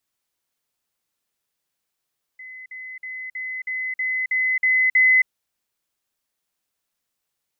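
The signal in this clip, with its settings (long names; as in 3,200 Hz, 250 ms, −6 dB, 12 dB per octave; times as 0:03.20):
level staircase 2,030 Hz −36 dBFS, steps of 3 dB, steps 9, 0.27 s 0.05 s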